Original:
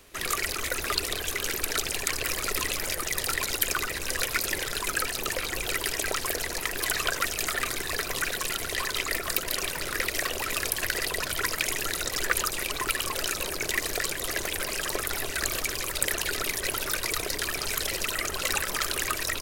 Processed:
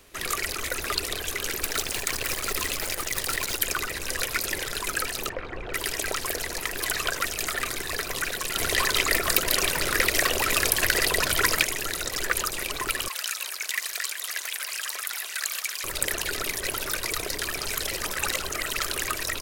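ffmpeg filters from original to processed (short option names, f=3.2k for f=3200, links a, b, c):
-filter_complex "[0:a]asplit=3[a][b][c];[a]afade=t=out:st=1.62:d=0.02[d];[b]acrusher=bits=6:dc=4:mix=0:aa=0.000001,afade=t=in:st=1.62:d=0.02,afade=t=out:st=3.59:d=0.02[e];[c]afade=t=in:st=3.59:d=0.02[f];[d][e][f]amix=inputs=3:normalize=0,asettb=1/sr,asplit=3[g][h][i];[g]atrim=end=5.294[j];[h]atrim=start=5.29:end=5.74,asetpts=PTS-STARTPTS,afade=t=in:d=0.004:c=qsin,afade=t=out:st=0.446:d=0.004:c=qsin,lowpass=1.5k[k];[i]atrim=start=5.736[l];[j][k]acrossfade=d=0.004:c1=hsin:c2=qsin[m];[m][l]acrossfade=d=0.004:c1=qsin:c2=hsin,asplit=3[n][o][p];[n]afade=t=out:st=8.55:d=0.02[q];[o]acontrast=57,afade=t=in:st=8.55:d=0.02,afade=t=out:st=11.63:d=0.02[r];[p]afade=t=in:st=11.63:d=0.02[s];[q][r][s]amix=inputs=3:normalize=0,asettb=1/sr,asplit=3[t][u][v];[t]atrim=end=13.084[w];[u]atrim=start=13.08:end=15.84,asetpts=PTS-STARTPTS,afade=t=in:d=0.004:c=qsin,afade=t=out:st=2.756:d=0.004:c=qsin,highpass=1.3k[x];[v]atrim=start=15.836[y];[w][x]acrossfade=d=0.004:c1=hsin:c2=qsin[z];[z][y]acrossfade=d=0.004:c1=qsin:c2=hsin,asplit=3[aa][ab][ac];[aa]atrim=end=18.022[ad];[ab]atrim=start=18.018:end=18.792,asetpts=PTS-STARTPTS,areverse[ae];[ac]atrim=start=18.788[af];[ad][ae]acrossfade=d=0.004:c1=hsin:c2=hsin[ag];[ag][af]acrossfade=d=0.004:c1=hsin:c2=hsin"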